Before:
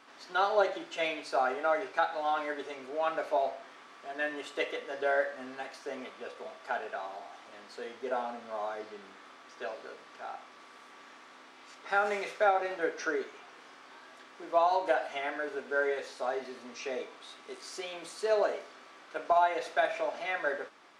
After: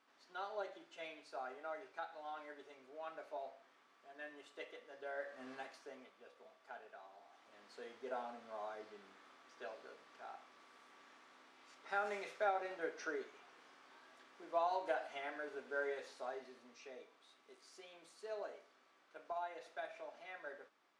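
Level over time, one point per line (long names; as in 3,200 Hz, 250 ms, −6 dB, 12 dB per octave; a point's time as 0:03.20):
0:05.13 −17.5 dB
0:05.52 −7 dB
0:06.11 −18.5 dB
0:07.12 −18.5 dB
0:07.76 −10.5 dB
0:16.09 −10.5 dB
0:16.95 −18 dB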